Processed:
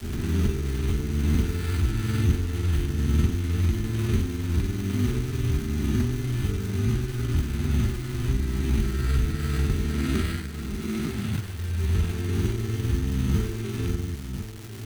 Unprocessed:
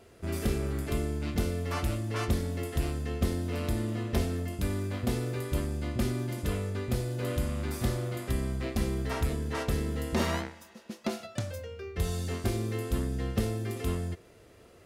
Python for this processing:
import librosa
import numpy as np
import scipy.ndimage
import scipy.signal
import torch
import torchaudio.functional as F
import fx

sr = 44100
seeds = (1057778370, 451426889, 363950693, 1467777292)

p1 = fx.spec_swells(x, sr, rise_s=2.27)
p2 = fx.brickwall_bandstop(p1, sr, low_hz=450.0, high_hz=1200.0)
p3 = fx.low_shelf(p2, sr, hz=210.0, db=7.5)
p4 = p3 + fx.echo_single(p3, sr, ms=1025, db=-10.0, dry=0)
p5 = fx.sample_hold(p4, sr, seeds[0], rate_hz=6200.0, jitter_pct=0)
p6 = fx.granulator(p5, sr, seeds[1], grain_ms=100.0, per_s=20.0, spray_ms=17.0, spread_st=0)
p7 = fx.dmg_crackle(p6, sr, seeds[2], per_s=570.0, level_db=-31.0)
y = p7 * 10.0 ** (-2.0 / 20.0)